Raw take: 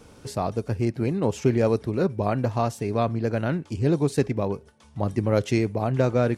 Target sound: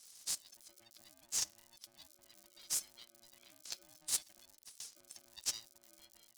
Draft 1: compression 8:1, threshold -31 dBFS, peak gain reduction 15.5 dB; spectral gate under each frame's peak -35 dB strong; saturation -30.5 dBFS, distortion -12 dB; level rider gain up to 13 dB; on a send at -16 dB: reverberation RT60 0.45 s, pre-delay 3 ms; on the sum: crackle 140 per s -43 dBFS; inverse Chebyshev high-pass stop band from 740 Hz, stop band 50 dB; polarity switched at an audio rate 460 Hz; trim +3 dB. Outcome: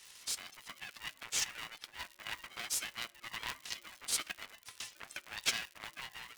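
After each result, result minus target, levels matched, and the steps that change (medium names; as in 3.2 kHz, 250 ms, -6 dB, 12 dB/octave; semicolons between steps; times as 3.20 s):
2 kHz band +16.5 dB; saturation: distortion +14 dB
change: inverse Chebyshev high-pass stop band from 1.9 kHz, stop band 50 dB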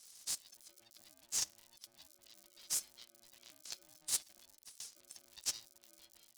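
saturation: distortion +14 dB
change: saturation -20 dBFS, distortion -27 dB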